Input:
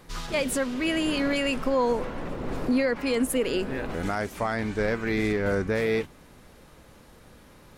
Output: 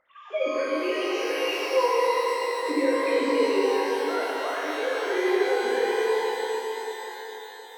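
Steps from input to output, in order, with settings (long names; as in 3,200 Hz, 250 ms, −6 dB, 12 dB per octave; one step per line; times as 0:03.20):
three sine waves on the formant tracks
reverb with rising layers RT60 3.9 s, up +12 semitones, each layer −8 dB, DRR −7.5 dB
level −6.5 dB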